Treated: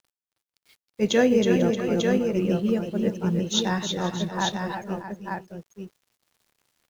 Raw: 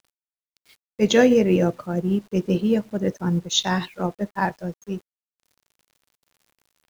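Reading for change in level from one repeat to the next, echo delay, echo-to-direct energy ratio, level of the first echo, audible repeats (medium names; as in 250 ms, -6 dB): no regular repeats, 317 ms, -2.0 dB, -8.5 dB, 4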